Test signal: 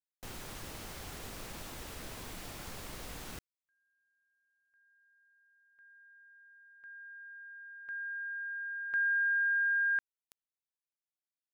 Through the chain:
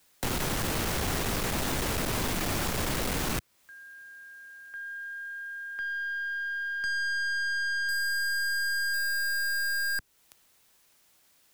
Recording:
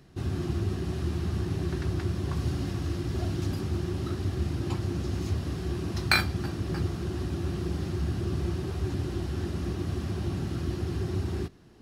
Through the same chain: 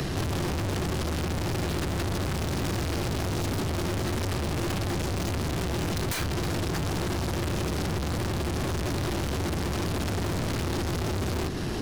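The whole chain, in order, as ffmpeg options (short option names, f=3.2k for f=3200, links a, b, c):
-filter_complex "[0:a]aeval=exprs='0.596*sin(PI/2*10*val(0)/0.596)':c=same,aeval=exprs='(tanh(28.2*val(0)+0.2)-tanh(0.2))/28.2':c=same,acrossover=split=89|380|2400[a][b][c][d];[a]acompressor=threshold=-42dB:ratio=6[e];[b]acompressor=threshold=-44dB:ratio=2[f];[c]acompressor=threshold=-47dB:ratio=2[g];[d]acompressor=threshold=-48dB:ratio=2[h];[e][f][g][h]amix=inputs=4:normalize=0,volume=8dB"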